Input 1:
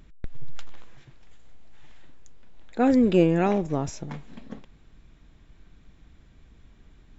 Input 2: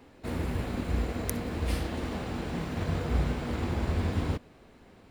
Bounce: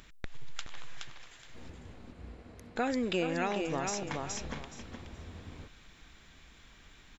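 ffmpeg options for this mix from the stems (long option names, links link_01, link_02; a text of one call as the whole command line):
ffmpeg -i stem1.wav -i stem2.wav -filter_complex "[0:a]tiltshelf=frequency=690:gain=-8.5,volume=1.5dB,asplit=3[link_01][link_02][link_03];[link_01]atrim=end=1.7,asetpts=PTS-STARTPTS,afade=type=out:start_time=1.696:duration=0.004:curve=hsin[link_04];[link_02]atrim=start=1.7:end=2.76,asetpts=PTS-STARTPTS,volume=0[link_05];[link_03]atrim=start=2.76,asetpts=PTS-STARTPTS,afade=type=in:duration=0.004:curve=hsin[link_06];[link_04][link_05][link_06]concat=n=3:v=0:a=1,asplit=2[link_07][link_08];[link_08]volume=-7.5dB[link_09];[1:a]lowpass=6800,adelay=1300,volume=-18.5dB[link_10];[link_09]aecho=0:1:421|842|1263:1|0.18|0.0324[link_11];[link_07][link_10][link_11]amix=inputs=3:normalize=0,acompressor=threshold=-33dB:ratio=2.5" out.wav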